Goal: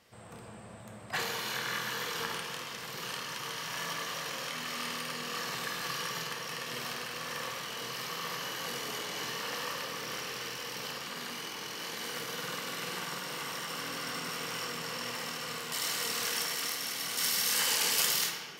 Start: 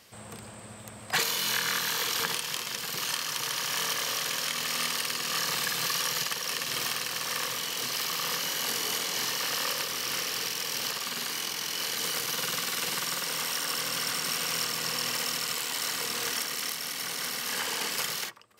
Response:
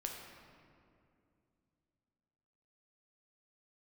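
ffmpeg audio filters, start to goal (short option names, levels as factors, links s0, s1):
-filter_complex "[0:a]asetnsamples=n=441:p=0,asendcmd='15.72 highshelf g 2;17.17 highshelf g 9.5',highshelf=f=3000:g=-8.5[s0];[1:a]atrim=start_sample=2205,asetrate=52920,aresample=44100[s1];[s0][s1]afir=irnorm=-1:irlink=0"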